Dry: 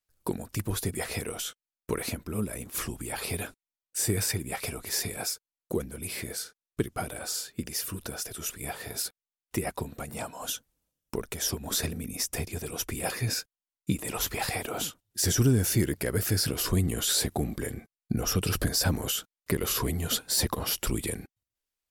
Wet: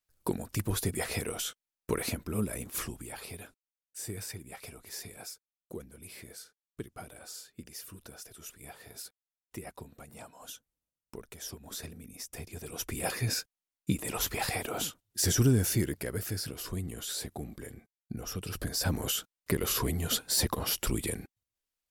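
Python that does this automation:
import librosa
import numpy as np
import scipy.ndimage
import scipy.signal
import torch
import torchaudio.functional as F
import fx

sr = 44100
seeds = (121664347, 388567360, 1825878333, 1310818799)

y = fx.gain(x, sr, db=fx.line((2.66, -0.5), (3.37, -12.0), (12.26, -12.0), (13.0, -1.5), (15.56, -1.5), (16.55, -10.5), (18.48, -10.5), (19.02, -1.5)))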